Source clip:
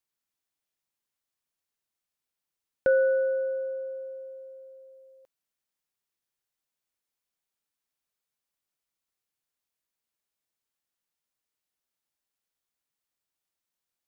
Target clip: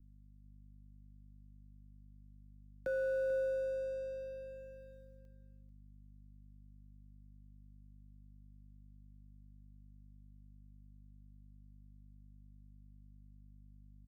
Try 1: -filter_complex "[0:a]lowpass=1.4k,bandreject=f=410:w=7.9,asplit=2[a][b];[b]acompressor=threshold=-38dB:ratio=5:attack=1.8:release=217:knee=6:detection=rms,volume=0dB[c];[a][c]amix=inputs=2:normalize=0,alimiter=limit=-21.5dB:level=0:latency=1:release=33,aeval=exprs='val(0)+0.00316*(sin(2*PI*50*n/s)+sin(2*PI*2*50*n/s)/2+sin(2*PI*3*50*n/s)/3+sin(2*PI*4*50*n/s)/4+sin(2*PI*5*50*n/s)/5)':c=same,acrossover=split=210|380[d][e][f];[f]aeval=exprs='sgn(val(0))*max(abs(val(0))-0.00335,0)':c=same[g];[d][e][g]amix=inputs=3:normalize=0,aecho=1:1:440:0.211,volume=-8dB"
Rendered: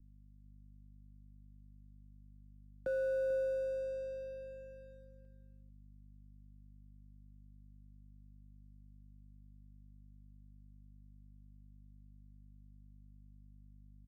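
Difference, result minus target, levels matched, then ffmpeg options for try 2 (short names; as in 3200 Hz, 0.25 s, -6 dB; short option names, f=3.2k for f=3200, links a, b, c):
1000 Hz band -2.5 dB
-filter_complex "[0:a]bandreject=f=410:w=7.9,asplit=2[a][b];[b]acompressor=threshold=-38dB:ratio=5:attack=1.8:release=217:knee=6:detection=rms,volume=0dB[c];[a][c]amix=inputs=2:normalize=0,alimiter=limit=-21.5dB:level=0:latency=1:release=33,aeval=exprs='val(0)+0.00316*(sin(2*PI*50*n/s)+sin(2*PI*2*50*n/s)/2+sin(2*PI*3*50*n/s)/3+sin(2*PI*4*50*n/s)/4+sin(2*PI*5*50*n/s)/5)':c=same,acrossover=split=210|380[d][e][f];[f]aeval=exprs='sgn(val(0))*max(abs(val(0))-0.00335,0)':c=same[g];[d][e][g]amix=inputs=3:normalize=0,aecho=1:1:440:0.211,volume=-8dB"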